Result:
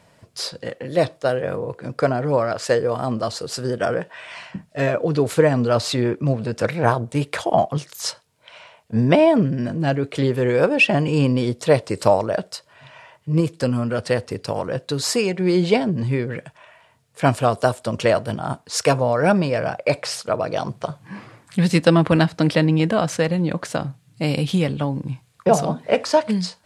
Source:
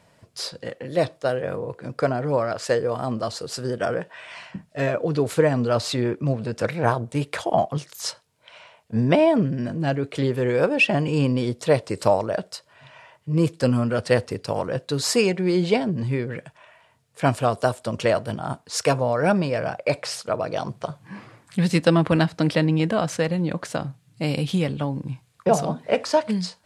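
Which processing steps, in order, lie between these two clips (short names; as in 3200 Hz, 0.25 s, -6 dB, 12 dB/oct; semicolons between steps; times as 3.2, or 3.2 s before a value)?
13.4–15.41 compressor 1.5:1, threshold -26 dBFS, peak gain reduction 5 dB; gain +3 dB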